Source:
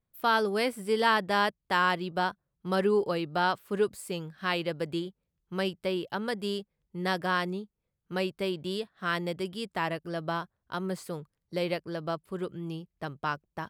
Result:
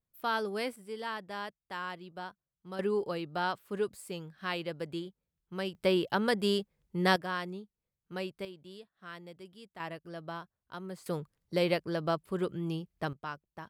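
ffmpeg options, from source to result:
-af "asetnsamples=n=441:p=0,asendcmd='0.76 volume volume -13.5dB;2.79 volume volume -5.5dB;5.75 volume volume 3.5dB;7.16 volume volume -7dB;8.45 volume volume -16dB;9.8 volume volume -9dB;11.06 volume volume 2dB;13.13 volume volume -8.5dB',volume=0.473"

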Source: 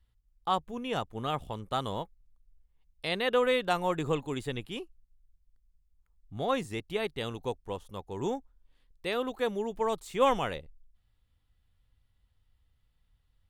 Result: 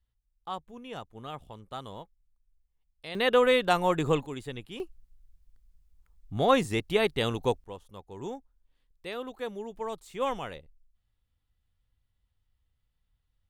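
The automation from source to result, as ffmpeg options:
-af "asetnsamples=n=441:p=0,asendcmd='3.15 volume volume 4dB;4.26 volume volume -3.5dB;4.8 volume volume 7dB;7.64 volume volume -5.5dB',volume=0.398"

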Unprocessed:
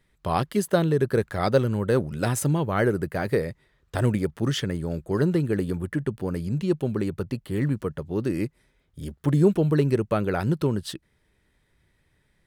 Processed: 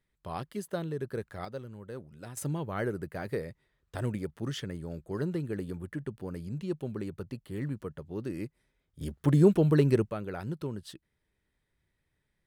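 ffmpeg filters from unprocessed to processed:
-af "asetnsamples=n=441:p=0,asendcmd='1.45 volume volume -20dB;2.37 volume volume -10dB;9.01 volume volume -2dB;10.1 volume volume -12dB',volume=0.224"

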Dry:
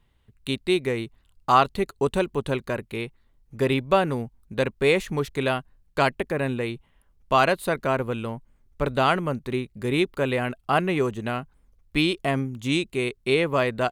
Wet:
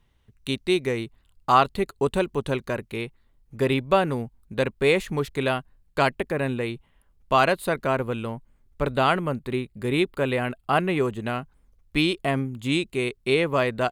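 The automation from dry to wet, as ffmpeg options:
-af "asetnsamples=n=441:p=0,asendcmd='1.03 equalizer g -4;2.29 equalizer g 3;3.03 equalizer g -3.5;8.91 equalizer g -11.5;11.26 equalizer g 0;12.17 equalizer g -11.5;12.83 equalizer g -1',equalizer=f=5900:t=o:w=0.21:g=7"

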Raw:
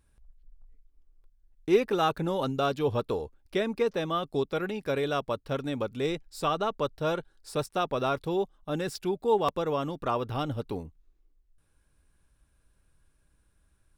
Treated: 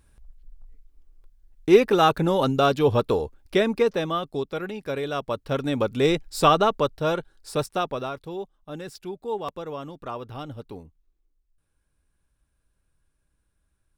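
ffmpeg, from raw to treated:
-af "volume=8.41,afade=t=out:st=3.59:d=0.79:silence=0.421697,afade=t=in:st=5.11:d=1.34:silence=0.281838,afade=t=out:st=6.45:d=0.49:silence=0.473151,afade=t=out:st=7.68:d=0.44:silence=0.334965"

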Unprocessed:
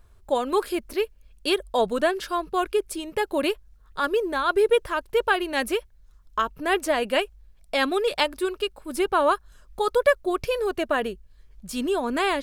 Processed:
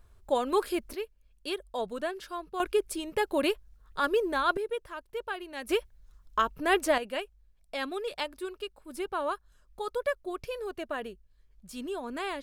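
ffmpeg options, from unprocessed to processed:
-af "asetnsamples=n=441:p=0,asendcmd='0.95 volume volume -11dB;2.6 volume volume -3dB;4.57 volume volume -14dB;5.69 volume volume -2dB;6.98 volume volume -11dB',volume=0.668"

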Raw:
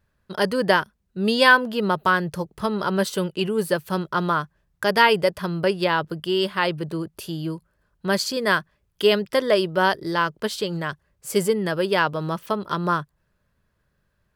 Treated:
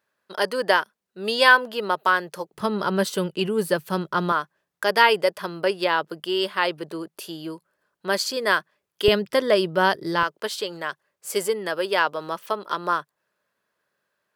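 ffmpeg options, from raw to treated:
-af "asetnsamples=n=441:p=0,asendcmd='2.53 highpass f 140;4.32 highpass f 340;9.08 highpass f 130;10.23 highpass f 420',highpass=420"

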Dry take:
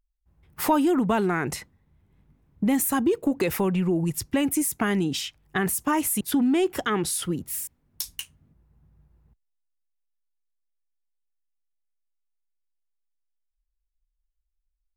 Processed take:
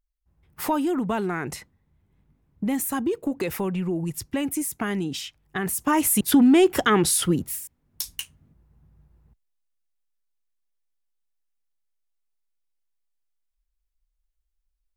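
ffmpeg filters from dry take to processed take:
-af "volume=4.47,afade=t=in:st=5.62:d=0.65:silence=0.354813,afade=t=out:st=7.41:d=0.19:silence=0.281838,afade=t=in:st=7.6:d=0.52:silence=0.446684"

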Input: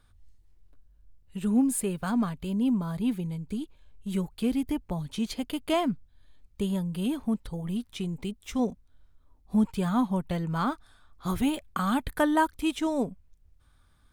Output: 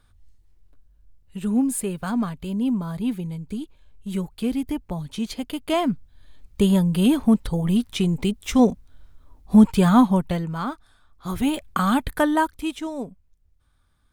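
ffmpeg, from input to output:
-af "volume=8.41,afade=t=in:st=5.66:d=1:silence=0.375837,afade=t=out:st=9.94:d=0.61:silence=0.281838,afade=t=in:st=11.28:d=0.42:silence=0.421697,afade=t=out:st=11.7:d=1.21:silence=0.298538"

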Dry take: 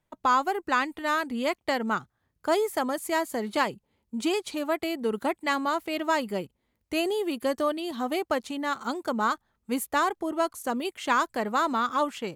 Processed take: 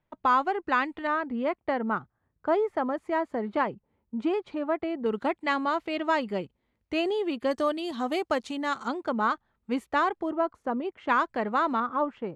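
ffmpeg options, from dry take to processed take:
-af "asetnsamples=n=441:p=0,asendcmd='1.07 lowpass f 1600;5.06 lowpass f 3700;7.51 lowpass f 7200;8.88 lowpass f 3200;10.32 lowpass f 1400;11.09 lowpass f 2800;11.8 lowpass f 1200',lowpass=3100"

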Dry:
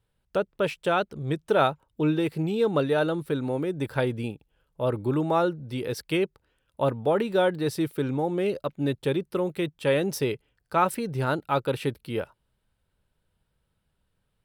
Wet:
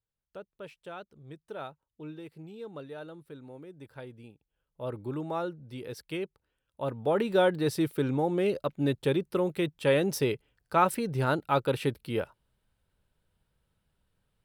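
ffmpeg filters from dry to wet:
-af "volume=0.891,afade=t=in:st=4.32:d=0.57:silence=0.354813,afade=t=in:st=6.81:d=0.49:silence=0.375837"

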